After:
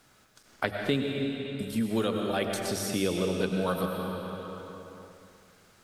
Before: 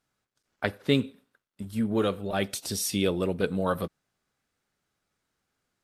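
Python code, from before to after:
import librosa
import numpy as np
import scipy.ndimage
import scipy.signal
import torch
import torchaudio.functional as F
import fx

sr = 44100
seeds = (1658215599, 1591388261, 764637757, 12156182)

y = fx.hum_notches(x, sr, base_hz=50, count=4)
y = fx.rev_freeverb(y, sr, rt60_s=1.9, hf_ratio=0.9, predelay_ms=60, drr_db=3.0)
y = fx.band_squash(y, sr, depth_pct=70)
y = y * librosa.db_to_amplitude(-2.5)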